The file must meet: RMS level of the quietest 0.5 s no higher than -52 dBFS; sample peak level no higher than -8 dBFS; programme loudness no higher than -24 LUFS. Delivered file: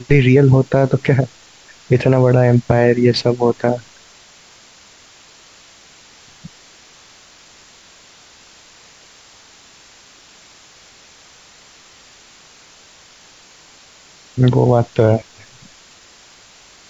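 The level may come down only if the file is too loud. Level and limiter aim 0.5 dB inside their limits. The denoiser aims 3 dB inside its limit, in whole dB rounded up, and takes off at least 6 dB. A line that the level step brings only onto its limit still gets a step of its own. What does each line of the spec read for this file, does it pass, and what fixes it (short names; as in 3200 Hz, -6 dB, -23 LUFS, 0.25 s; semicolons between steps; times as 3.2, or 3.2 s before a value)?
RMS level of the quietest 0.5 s -46 dBFS: fail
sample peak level -1.5 dBFS: fail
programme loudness -14.5 LUFS: fail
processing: gain -10 dB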